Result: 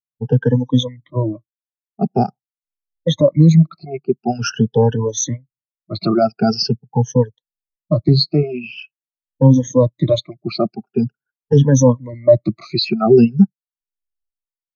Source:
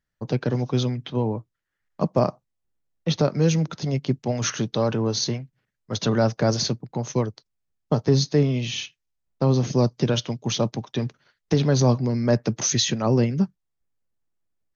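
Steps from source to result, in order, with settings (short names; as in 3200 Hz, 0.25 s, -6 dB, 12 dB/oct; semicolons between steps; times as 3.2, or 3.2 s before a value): moving spectral ripple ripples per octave 1.1, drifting +0.45 Hz, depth 23 dB; reverb removal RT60 1.7 s; low-pass opened by the level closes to 660 Hz, open at -16 dBFS; maximiser +8.5 dB; spectral expander 1.5:1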